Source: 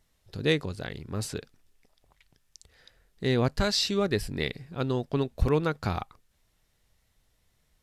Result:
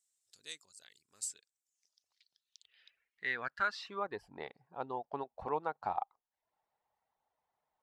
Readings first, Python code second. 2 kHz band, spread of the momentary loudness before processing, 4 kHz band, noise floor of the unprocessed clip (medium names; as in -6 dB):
-4.5 dB, 11 LU, -18.0 dB, -72 dBFS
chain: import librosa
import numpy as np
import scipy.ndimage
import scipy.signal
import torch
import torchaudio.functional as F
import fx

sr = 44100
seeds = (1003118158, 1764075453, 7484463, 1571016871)

y = fx.dereverb_blind(x, sr, rt60_s=0.53)
y = fx.filter_sweep_bandpass(y, sr, from_hz=7800.0, to_hz=840.0, start_s=1.58, end_s=4.23, q=4.7)
y = y * 10.0 ** (4.5 / 20.0)